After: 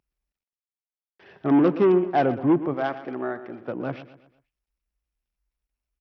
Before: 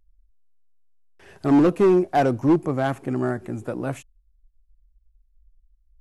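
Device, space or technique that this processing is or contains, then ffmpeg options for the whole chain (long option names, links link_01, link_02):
Bluetooth headset: -filter_complex "[0:a]asplit=3[link_01][link_02][link_03];[link_01]afade=type=out:start_time=2.73:duration=0.02[link_04];[link_02]bass=frequency=250:gain=-14,treble=frequency=4000:gain=-4,afade=type=in:start_time=2.73:duration=0.02,afade=type=out:start_time=3.67:duration=0.02[link_05];[link_03]afade=type=in:start_time=3.67:duration=0.02[link_06];[link_04][link_05][link_06]amix=inputs=3:normalize=0,highpass=140,aecho=1:1:122|244|366|488:0.2|0.0818|0.0335|0.0138,aresample=8000,aresample=44100,volume=-1.5dB" -ar 44100 -c:a sbc -b:a 64k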